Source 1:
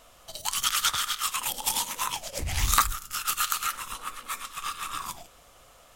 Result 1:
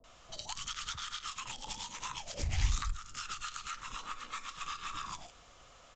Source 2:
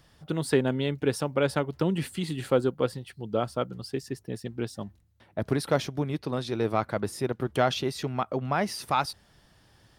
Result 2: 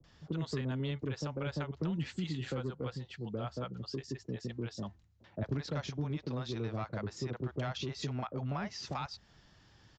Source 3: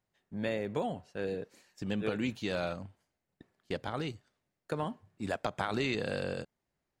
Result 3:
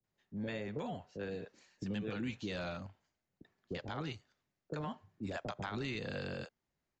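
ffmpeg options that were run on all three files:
-filter_complex "[0:a]acrossover=split=570[a][b];[b]adelay=40[c];[a][c]amix=inputs=2:normalize=0,acrossover=split=220|1100[d][e][f];[e]asoftclip=type=tanh:threshold=-25dB[g];[d][g][f]amix=inputs=3:normalize=0,acrossover=split=160[h][i];[i]acompressor=threshold=-35dB:ratio=6[j];[h][j]amix=inputs=2:normalize=0,aresample=16000,aresample=44100,volume=-2dB"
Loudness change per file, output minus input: -12.0, -9.5, -6.0 LU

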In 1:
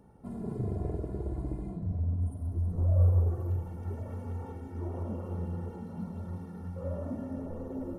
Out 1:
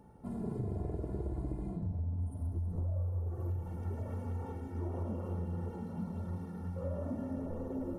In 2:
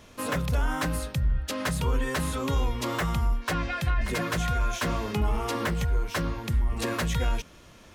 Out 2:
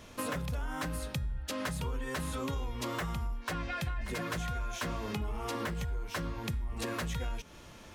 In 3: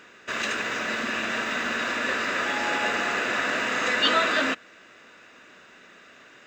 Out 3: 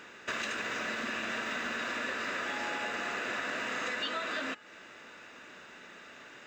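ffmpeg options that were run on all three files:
-af "acompressor=threshold=-32dB:ratio=10,aeval=exprs='val(0)+0.000447*sin(2*PI*870*n/s)':c=same,bandreject=f=415.2:t=h:w=4,bandreject=f=830.4:t=h:w=4,bandreject=f=1.2456k:t=h:w=4,bandreject=f=1.6608k:t=h:w=4,bandreject=f=2.076k:t=h:w=4,bandreject=f=2.4912k:t=h:w=4,bandreject=f=2.9064k:t=h:w=4,bandreject=f=3.3216k:t=h:w=4,bandreject=f=3.7368k:t=h:w=4,bandreject=f=4.152k:t=h:w=4,bandreject=f=4.5672k:t=h:w=4,bandreject=f=4.9824k:t=h:w=4,bandreject=f=5.3976k:t=h:w=4,bandreject=f=5.8128k:t=h:w=4,bandreject=f=6.228k:t=h:w=4,bandreject=f=6.6432k:t=h:w=4,bandreject=f=7.0584k:t=h:w=4,bandreject=f=7.4736k:t=h:w=4,bandreject=f=7.8888k:t=h:w=4,bandreject=f=8.304k:t=h:w=4,bandreject=f=8.7192k:t=h:w=4,bandreject=f=9.1344k:t=h:w=4,bandreject=f=9.5496k:t=h:w=4,bandreject=f=9.9648k:t=h:w=4,bandreject=f=10.38k:t=h:w=4,bandreject=f=10.7952k:t=h:w=4,bandreject=f=11.2104k:t=h:w=4,bandreject=f=11.6256k:t=h:w=4,bandreject=f=12.0408k:t=h:w=4"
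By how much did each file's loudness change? -5.0, -8.0, -9.5 LU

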